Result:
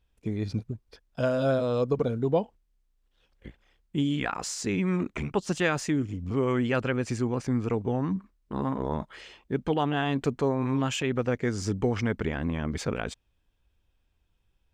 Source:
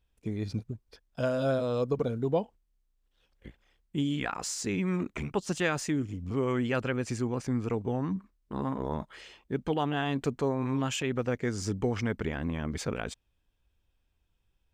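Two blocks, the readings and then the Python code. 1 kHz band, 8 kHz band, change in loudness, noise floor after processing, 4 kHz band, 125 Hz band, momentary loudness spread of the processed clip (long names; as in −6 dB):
+3.0 dB, +0.5 dB, +3.0 dB, −72 dBFS, +2.0 dB, +3.0 dB, 9 LU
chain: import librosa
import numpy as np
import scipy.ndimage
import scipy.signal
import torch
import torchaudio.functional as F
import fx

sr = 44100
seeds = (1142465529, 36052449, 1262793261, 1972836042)

y = fx.high_shelf(x, sr, hz=7600.0, db=-6.0)
y = y * 10.0 ** (3.0 / 20.0)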